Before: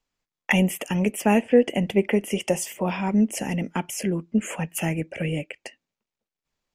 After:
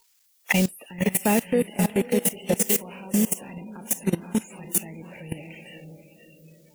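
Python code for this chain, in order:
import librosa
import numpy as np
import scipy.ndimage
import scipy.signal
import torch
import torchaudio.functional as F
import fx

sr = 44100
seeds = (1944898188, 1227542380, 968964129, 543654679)

y = x + 0.5 * 10.0 ** (-18.0 / 20.0) * np.diff(np.sign(x), prepend=np.sign(x[:1]))
y = fx.recorder_agc(y, sr, target_db=-14.5, rise_db_per_s=65.0, max_gain_db=30)
y = fx.echo_diffused(y, sr, ms=550, feedback_pct=45, wet_db=-5.0)
y = fx.level_steps(y, sr, step_db=19)
y = fx.noise_reduce_blind(y, sr, reduce_db=26)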